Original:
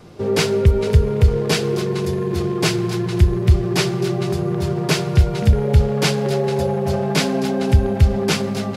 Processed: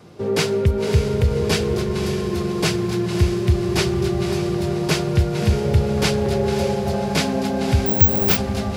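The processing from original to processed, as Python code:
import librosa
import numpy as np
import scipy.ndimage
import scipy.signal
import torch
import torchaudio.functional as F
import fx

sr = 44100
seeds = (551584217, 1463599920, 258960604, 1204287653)

y = scipy.signal.sosfilt(scipy.signal.butter(2, 75.0, 'highpass', fs=sr, output='sos'), x)
y = fx.echo_diffused(y, sr, ms=564, feedback_pct=48, wet_db=-8)
y = fx.resample_bad(y, sr, factor=2, down='none', up='zero_stuff', at=(7.86, 8.37))
y = y * librosa.db_to_amplitude(-2.0)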